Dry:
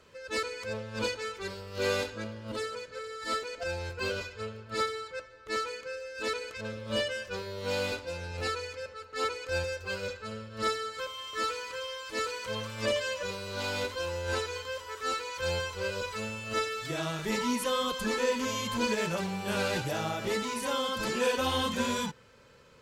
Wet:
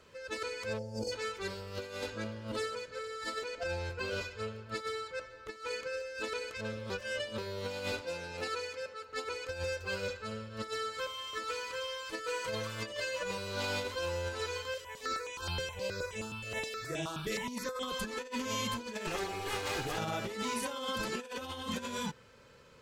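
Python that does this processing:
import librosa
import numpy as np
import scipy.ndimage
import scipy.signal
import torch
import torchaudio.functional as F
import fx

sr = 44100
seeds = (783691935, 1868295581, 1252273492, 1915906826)

y = fx.spec_box(x, sr, start_s=0.78, length_s=0.34, low_hz=890.0, high_hz=4400.0, gain_db=-22)
y = fx.high_shelf(y, sr, hz=7300.0, db=-6.0, at=(3.44, 4.11))
y = fx.over_compress(y, sr, threshold_db=-38.0, ratio=-0.5, at=(5.21, 6.02))
y = fx.highpass(y, sr, hz=160.0, slope=12, at=(8.01, 9.09))
y = fx.comb(y, sr, ms=6.2, depth=0.65, at=(12.12, 13.38))
y = fx.phaser_held(y, sr, hz=9.5, low_hz=240.0, high_hz=4500.0, at=(14.74, 17.83))
y = fx.lower_of_two(y, sr, delay_ms=2.4, at=(19.07, 19.98))
y = fx.edit(y, sr, fx.reverse_span(start_s=6.9, length_s=0.48), tone=tone)
y = fx.over_compress(y, sr, threshold_db=-33.0, ratio=-0.5)
y = F.gain(torch.from_numpy(y), -2.5).numpy()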